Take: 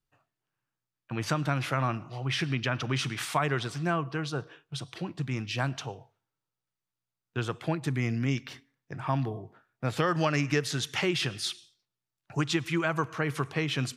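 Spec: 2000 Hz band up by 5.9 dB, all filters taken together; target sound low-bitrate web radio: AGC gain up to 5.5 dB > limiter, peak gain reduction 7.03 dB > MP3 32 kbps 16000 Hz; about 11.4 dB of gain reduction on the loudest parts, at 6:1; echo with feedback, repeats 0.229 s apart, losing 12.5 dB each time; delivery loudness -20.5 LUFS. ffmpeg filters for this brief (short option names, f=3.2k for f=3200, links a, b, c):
-af "equalizer=f=2k:t=o:g=7.5,acompressor=threshold=-33dB:ratio=6,aecho=1:1:229|458|687:0.237|0.0569|0.0137,dynaudnorm=m=5.5dB,alimiter=level_in=1.5dB:limit=-24dB:level=0:latency=1,volume=-1.5dB,volume=18dB" -ar 16000 -c:a libmp3lame -b:a 32k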